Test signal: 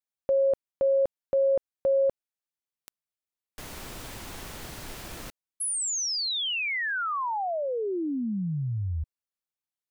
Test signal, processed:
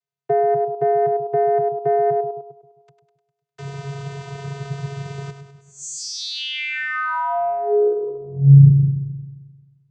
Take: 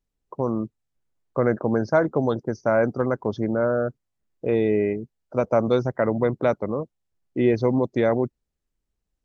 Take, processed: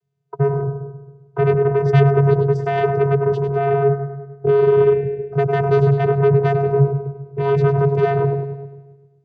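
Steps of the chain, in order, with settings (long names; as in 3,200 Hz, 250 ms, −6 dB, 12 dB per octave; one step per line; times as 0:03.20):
echo with a time of its own for lows and highs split 400 Hz, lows 132 ms, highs 101 ms, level −9 dB
sine wavefolder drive 12 dB, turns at −5 dBFS
channel vocoder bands 16, square 139 Hz
level −4.5 dB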